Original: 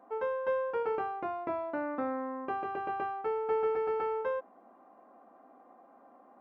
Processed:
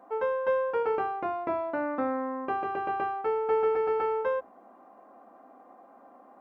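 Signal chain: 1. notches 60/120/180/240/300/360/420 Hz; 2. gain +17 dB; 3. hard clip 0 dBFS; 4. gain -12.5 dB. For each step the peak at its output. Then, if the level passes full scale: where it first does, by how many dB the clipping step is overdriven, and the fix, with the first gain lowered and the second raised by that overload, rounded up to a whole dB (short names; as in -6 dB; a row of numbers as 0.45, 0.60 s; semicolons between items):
-21.5, -4.5, -4.5, -17.0 dBFS; no overload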